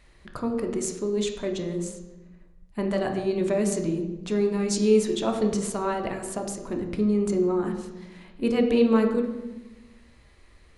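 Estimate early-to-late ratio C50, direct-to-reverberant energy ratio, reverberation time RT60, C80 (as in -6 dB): 6.5 dB, 3.0 dB, 1.1 s, 8.5 dB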